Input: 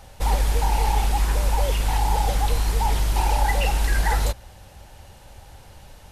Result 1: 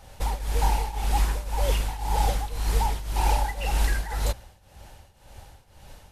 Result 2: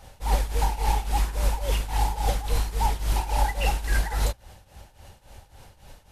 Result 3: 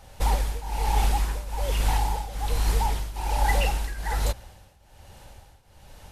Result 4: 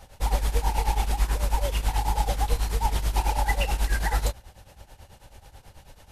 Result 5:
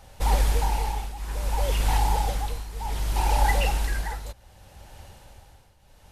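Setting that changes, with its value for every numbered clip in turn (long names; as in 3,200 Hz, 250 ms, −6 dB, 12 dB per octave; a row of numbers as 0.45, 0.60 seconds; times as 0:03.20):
shaped tremolo, speed: 1.9, 3.6, 1.2, 9.2, 0.65 Hertz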